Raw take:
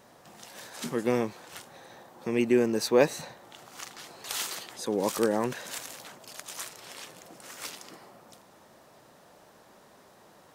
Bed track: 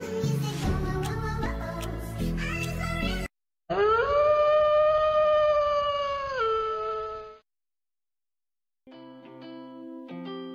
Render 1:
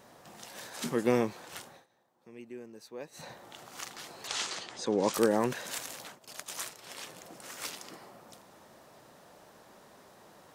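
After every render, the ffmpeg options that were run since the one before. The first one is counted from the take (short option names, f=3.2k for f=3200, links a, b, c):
-filter_complex "[0:a]asettb=1/sr,asplit=3[a][b][c];[a]atrim=end=4.274[d];[b]atrim=start=4.27:end=5.14,asetpts=PTS-STARTPTS,afade=t=in:d=0.004:c=qsin,afade=t=out:st=0.866:d=0.004:c=qsin,lowpass=f=7.4k:w=0.5412,lowpass=f=7.4k:w=1.3066[e];[c]atrim=start=5.136[f];[d][e]acrossfade=d=0.004:c1=hsin:c2=qsin[g];[g][f]acrossfade=d=0.004:c1=qsin:c2=hsin,asplit=3[h][i][j];[h]afade=t=out:st=6.06:d=0.02[k];[i]agate=range=-33dB:threshold=-45dB:ratio=3:release=100:detection=peak,afade=t=in:st=6.06:d=0.02,afade=t=out:st=6.97:d=0.02[l];[j]afade=t=in:st=6.97:d=0.02[m];[k][l][m]amix=inputs=3:normalize=0,asplit=3[n][o][p];[n]atrim=end=1.86,asetpts=PTS-STARTPTS,afade=t=out:st=1.66:d=0.2:silence=0.0794328[q];[o]atrim=start=1.86:end=3.12,asetpts=PTS-STARTPTS,volume=-22dB[r];[p]atrim=start=3.12,asetpts=PTS-STARTPTS,afade=t=in:d=0.2:silence=0.0794328[s];[q][r][s]concat=n=3:v=0:a=1"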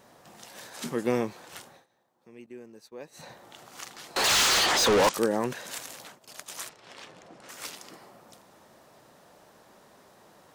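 -filter_complex "[0:a]asettb=1/sr,asplit=3[a][b][c];[a]atrim=end=2.464[d];[b]atrim=start=2.46:end=2.99,asetpts=PTS-STARTPTS,afade=t=in:d=0.004:c=qsin,afade=t=out:st=0.526:d=0.004:c=qsin,agate=range=-33dB:threshold=-52dB:ratio=3:release=100:detection=peak[e];[c]atrim=start=2.986[f];[d][e]acrossfade=d=0.004:c1=hsin:c2=qsin[g];[g][f]acrossfade=d=0.004:c1=qsin:c2=hsin,asettb=1/sr,asplit=3[h][i][j];[h]atrim=end=4.164[k];[i]atrim=start=4.16:end=5.09,asetpts=PTS-STARTPTS,afade=t=in:d=0.004:c=qsin,afade=t=out:st=0.926:d=0.004:c=qsin,asplit=2[l][m];[m]highpass=f=720:p=1,volume=37dB,asoftclip=type=tanh:threshold=-14.5dB[n];[l][n]amix=inputs=2:normalize=0,lowpass=f=7.2k:p=1,volume=-6dB[o];[j]atrim=start=5.086[p];[k][o]acrossfade=d=0.004:c1=hsin:c2=qsin[q];[q][p]acrossfade=d=0.004:c1=qsin:c2=hsin,asettb=1/sr,asplit=3[r][s][t];[r]atrim=end=6.694[u];[s]atrim=start=6.69:end=7.49,asetpts=PTS-STARTPTS,afade=t=in:d=0.004:c=qsin,afade=t=out:st=0.796:d=0.004:c=qsin,adynamicsmooth=sensitivity=5.5:basefreq=4.6k[v];[t]atrim=start=7.486[w];[u][v]acrossfade=d=0.004:c1=hsin:c2=qsin[x];[x][w]acrossfade=d=0.004:c1=qsin:c2=hsin"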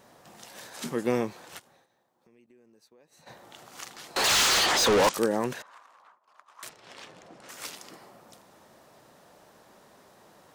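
-filter_complex "[0:a]asplit=3[a][b][c];[a]afade=t=out:st=1.58:d=0.02[d];[b]acompressor=threshold=-58dB:ratio=4:attack=3.2:release=140:knee=1:detection=peak,afade=t=in:st=1.58:d=0.02,afade=t=out:st=3.26:d=0.02[e];[c]afade=t=in:st=3.26:d=0.02[f];[d][e][f]amix=inputs=3:normalize=0,asettb=1/sr,asplit=3[g][h][i];[g]atrim=end=5.624[j];[h]atrim=start=5.62:end=6.63,asetpts=PTS-STARTPTS,afade=t=in:d=0.004:c=qsin,afade=t=out:st=1.006:d=0.004:c=qsin,bandpass=f=1.1k:t=q:w=4.5[k];[i]atrim=start=6.626[l];[j][k]acrossfade=d=0.004:c1=hsin:c2=qsin[m];[m][l]acrossfade=d=0.004:c1=qsin:c2=hsin"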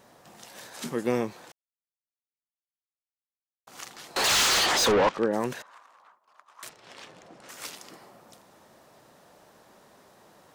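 -filter_complex "[0:a]asplit=3[a][b][c];[a]afade=t=out:st=4.91:d=0.02[d];[b]lowpass=2.6k,afade=t=in:st=4.91:d=0.02,afade=t=out:st=5.32:d=0.02[e];[c]afade=t=in:st=5.32:d=0.02[f];[d][e][f]amix=inputs=3:normalize=0,asplit=3[g][h][i];[g]atrim=end=1.52,asetpts=PTS-STARTPTS,afade=t=out:st=1.516:d=0.004:c=hsin[j];[h]atrim=start=1.52:end=3.67,asetpts=PTS-STARTPTS,volume=0[k];[i]atrim=start=3.67,asetpts=PTS-STARTPTS,afade=t=in:d=0.004:c=hsin[l];[j][k][l]concat=n=3:v=0:a=1"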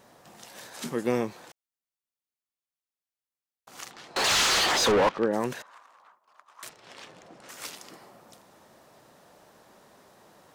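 -filter_complex "[0:a]asettb=1/sr,asplit=3[a][b][c];[a]atrim=end=3.914[d];[b]atrim=start=3.91:end=5.27,asetpts=PTS-STARTPTS,afade=t=in:d=0.004:c=qsin,afade=t=out:st=1.356:d=0.004:c=qsin,adynamicsmooth=sensitivity=8:basefreq=4.8k[e];[c]atrim=start=5.266[f];[d][e]acrossfade=d=0.004:c1=hsin:c2=qsin[g];[g][f]acrossfade=d=0.004:c1=qsin:c2=hsin"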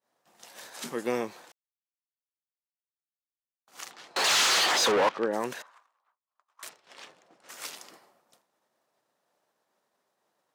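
-af "highpass=f=410:p=1,agate=range=-33dB:threshold=-45dB:ratio=3:detection=peak"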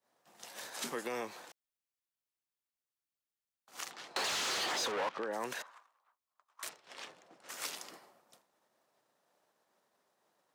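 -filter_complex "[0:a]alimiter=limit=-23dB:level=0:latency=1:release=129,acrossover=split=260|570[a][b][c];[a]acompressor=threshold=-53dB:ratio=4[d];[b]acompressor=threshold=-45dB:ratio=4[e];[c]acompressor=threshold=-34dB:ratio=4[f];[d][e][f]amix=inputs=3:normalize=0"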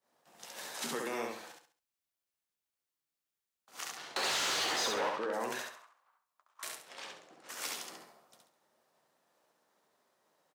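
-filter_complex "[0:a]asplit=2[a][b];[b]adelay=13,volume=-12dB[c];[a][c]amix=inputs=2:normalize=0,aecho=1:1:68|136|204|272:0.708|0.234|0.0771|0.0254"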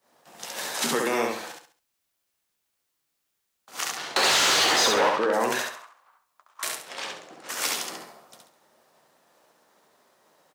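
-af "volume=12dB"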